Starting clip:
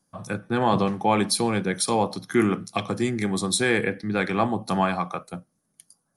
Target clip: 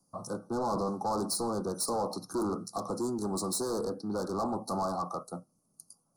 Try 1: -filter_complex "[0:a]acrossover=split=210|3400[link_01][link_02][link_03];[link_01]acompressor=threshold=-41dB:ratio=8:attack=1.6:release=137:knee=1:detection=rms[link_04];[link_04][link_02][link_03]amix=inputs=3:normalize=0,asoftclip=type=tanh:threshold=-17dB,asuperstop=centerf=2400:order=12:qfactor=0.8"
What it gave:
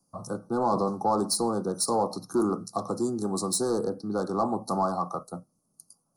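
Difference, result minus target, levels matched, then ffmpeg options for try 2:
downward compressor: peak gain reduction −7 dB; soft clipping: distortion −8 dB
-filter_complex "[0:a]acrossover=split=210|3400[link_01][link_02][link_03];[link_01]acompressor=threshold=-49dB:ratio=8:attack=1.6:release=137:knee=1:detection=rms[link_04];[link_04][link_02][link_03]amix=inputs=3:normalize=0,asoftclip=type=tanh:threshold=-27.5dB,asuperstop=centerf=2400:order=12:qfactor=0.8"

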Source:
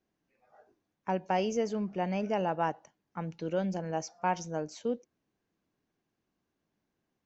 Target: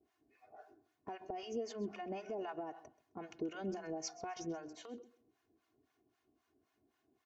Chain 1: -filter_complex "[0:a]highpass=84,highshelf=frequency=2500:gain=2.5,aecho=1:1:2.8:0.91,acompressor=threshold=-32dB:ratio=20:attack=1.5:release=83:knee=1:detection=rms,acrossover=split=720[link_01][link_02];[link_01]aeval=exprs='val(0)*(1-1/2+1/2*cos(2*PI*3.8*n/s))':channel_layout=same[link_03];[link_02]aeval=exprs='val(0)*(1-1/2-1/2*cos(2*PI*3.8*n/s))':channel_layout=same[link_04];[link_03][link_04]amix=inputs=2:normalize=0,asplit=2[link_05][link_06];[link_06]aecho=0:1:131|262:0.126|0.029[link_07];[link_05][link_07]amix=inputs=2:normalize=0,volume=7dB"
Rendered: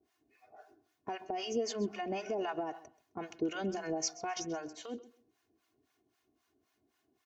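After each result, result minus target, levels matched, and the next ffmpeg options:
downward compressor: peak gain reduction −6 dB; 4,000 Hz band +3.0 dB
-filter_complex "[0:a]highpass=84,highshelf=frequency=2500:gain=2.5,aecho=1:1:2.8:0.91,acompressor=threshold=-39dB:ratio=20:attack=1.5:release=83:knee=1:detection=rms,acrossover=split=720[link_01][link_02];[link_01]aeval=exprs='val(0)*(1-1/2+1/2*cos(2*PI*3.8*n/s))':channel_layout=same[link_03];[link_02]aeval=exprs='val(0)*(1-1/2-1/2*cos(2*PI*3.8*n/s))':channel_layout=same[link_04];[link_03][link_04]amix=inputs=2:normalize=0,asplit=2[link_05][link_06];[link_06]aecho=0:1:131|262:0.126|0.029[link_07];[link_05][link_07]amix=inputs=2:normalize=0,volume=7dB"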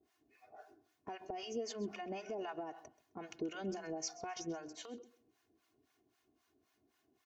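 4,000 Hz band +3.0 dB
-filter_complex "[0:a]highpass=84,highshelf=frequency=2500:gain=-5.5,aecho=1:1:2.8:0.91,acompressor=threshold=-39dB:ratio=20:attack=1.5:release=83:knee=1:detection=rms,acrossover=split=720[link_01][link_02];[link_01]aeval=exprs='val(0)*(1-1/2+1/2*cos(2*PI*3.8*n/s))':channel_layout=same[link_03];[link_02]aeval=exprs='val(0)*(1-1/2-1/2*cos(2*PI*3.8*n/s))':channel_layout=same[link_04];[link_03][link_04]amix=inputs=2:normalize=0,asplit=2[link_05][link_06];[link_06]aecho=0:1:131|262:0.126|0.029[link_07];[link_05][link_07]amix=inputs=2:normalize=0,volume=7dB"

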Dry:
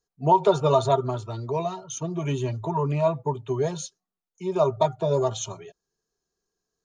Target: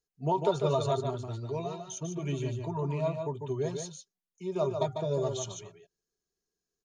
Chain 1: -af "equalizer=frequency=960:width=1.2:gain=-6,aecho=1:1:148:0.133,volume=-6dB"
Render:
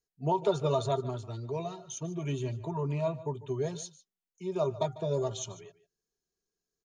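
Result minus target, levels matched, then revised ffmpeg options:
echo-to-direct −11.5 dB
-af "equalizer=frequency=960:width=1.2:gain=-6,aecho=1:1:148:0.501,volume=-6dB"

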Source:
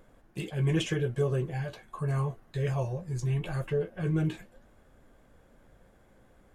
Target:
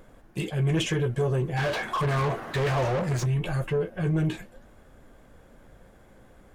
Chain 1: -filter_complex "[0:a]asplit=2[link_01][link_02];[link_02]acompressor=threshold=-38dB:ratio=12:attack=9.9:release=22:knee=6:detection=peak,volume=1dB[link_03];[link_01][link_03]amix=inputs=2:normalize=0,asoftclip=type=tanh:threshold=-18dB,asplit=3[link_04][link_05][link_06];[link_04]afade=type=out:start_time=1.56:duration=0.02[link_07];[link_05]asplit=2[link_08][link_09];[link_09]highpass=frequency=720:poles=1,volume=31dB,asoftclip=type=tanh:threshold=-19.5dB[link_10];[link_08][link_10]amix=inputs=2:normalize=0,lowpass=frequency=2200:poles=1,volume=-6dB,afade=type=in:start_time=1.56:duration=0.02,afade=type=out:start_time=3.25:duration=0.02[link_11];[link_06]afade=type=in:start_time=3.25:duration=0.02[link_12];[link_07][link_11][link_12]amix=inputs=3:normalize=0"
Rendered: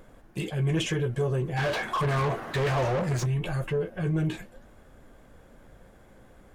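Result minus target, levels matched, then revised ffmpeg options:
downward compressor: peak gain reduction +8 dB
-filter_complex "[0:a]asplit=2[link_01][link_02];[link_02]acompressor=threshold=-29.5dB:ratio=12:attack=9.9:release=22:knee=6:detection=peak,volume=1dB[link_03];[link_01][link_03]amix=inputs=2:normalize=0,asoftclip=type=tanh:threshold=-18dB,asplit=3[link_04][link_05][link_06];[link_04]afade=type=out:start_time=1.56:duration=0.02[link_07];[link_05]asplit=2[link_08][link_09];[link_09]highpass=frequency=720:poles=1,volume=31dB,asoftclip=type=tanh:threshold=-19.5dB[link_10];[link_08][link_10]amix=inputs=2:normalize=0,lowpass=frequency=2200:poles=1,volume=-6dB,afade=type=in:start_time=1.56:duration=0.02,afade=type=out:start_time=3.25:duration=0.02[link_11];[link_06]afade=type=in:start_time=3.25:duration=0.02[link_12];[link_07][link_11][link_12]amix=inputs=3:normalize=0"

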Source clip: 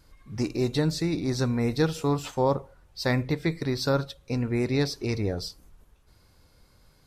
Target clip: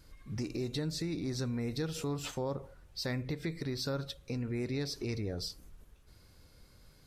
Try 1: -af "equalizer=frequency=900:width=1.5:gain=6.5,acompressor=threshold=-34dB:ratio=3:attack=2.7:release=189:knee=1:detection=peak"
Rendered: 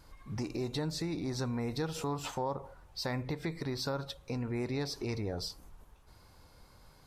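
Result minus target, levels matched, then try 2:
1,000 Hz band +7.0 dB
-af "equalizer=frequency=900:width=1.5:gain=-5,acompressor=threshold=-34dB:ratio=3:attack=2.7:release=189:knee=1:detection=peak"

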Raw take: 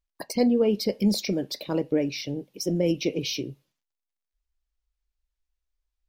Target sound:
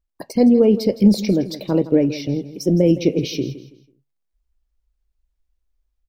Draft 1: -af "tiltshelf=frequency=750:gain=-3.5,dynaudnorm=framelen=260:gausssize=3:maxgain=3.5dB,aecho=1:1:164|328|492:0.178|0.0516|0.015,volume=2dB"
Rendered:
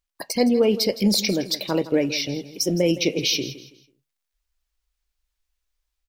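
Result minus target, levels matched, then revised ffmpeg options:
1,000 Hz band +5.0 dB
-af "tiltshelf=frequency=750:gain=5.5,dynaudnorm=framelen=260:gausssize=3:maxgain=3.5dB,aecho=1:1:164|328|492:0.178|0.0516|0.015,volume=2dB"

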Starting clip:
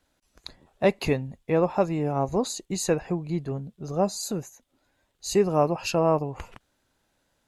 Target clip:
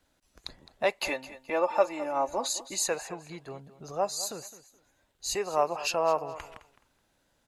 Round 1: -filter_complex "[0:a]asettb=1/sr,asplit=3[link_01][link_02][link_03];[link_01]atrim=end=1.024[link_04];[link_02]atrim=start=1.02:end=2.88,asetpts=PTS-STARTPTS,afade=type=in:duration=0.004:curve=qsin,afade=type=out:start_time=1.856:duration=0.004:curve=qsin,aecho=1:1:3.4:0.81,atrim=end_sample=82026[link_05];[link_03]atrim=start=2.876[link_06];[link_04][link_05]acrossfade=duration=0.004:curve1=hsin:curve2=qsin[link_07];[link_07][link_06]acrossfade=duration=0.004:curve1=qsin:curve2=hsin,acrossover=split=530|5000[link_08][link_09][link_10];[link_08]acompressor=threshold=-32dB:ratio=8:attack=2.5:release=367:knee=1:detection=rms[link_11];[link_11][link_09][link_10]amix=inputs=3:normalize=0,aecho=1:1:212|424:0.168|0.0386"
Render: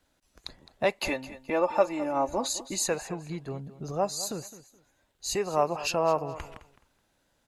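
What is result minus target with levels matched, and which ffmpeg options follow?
downward compressor: peak gain reduction −10 dB
-filter_complex "[0:a]asettb=1/sr,asplit=3[link_01][link_02][link_03];[link_01]atrim=end=1.024[link_04];[link_02]atrim=start=1.02:end=2.88,asetpts=PTS-STARTPTS,afade=type=in:duration=0.004:curve=qsin,afade=type=out:start_time=1.856:duration=0.004:curve=qsin,aecho=1:1:3.4:0.81,atrim=end_sample=82026[link_05];[link_03]atrim=start=2.876[link_06];[link_04][link_05]acrossfade=duration=0.004:curve1=hsin:curve2=qsin[link_07];[link_07][link_06]acrossfade=duration=0.004:curve1=qsin:curve2=hsin,acrossover=split=530|5000[link_08][link_09][link_10];[link_08]acompressor=threshold=-43.5dB:ratio=8:attack=2.5:release=367:knee=1:detection=rms[link_11];[link_11][link_09][link_10]amix=inputs=3:normalize=0,aecho=1:1:212|424:0.168|0.0386"

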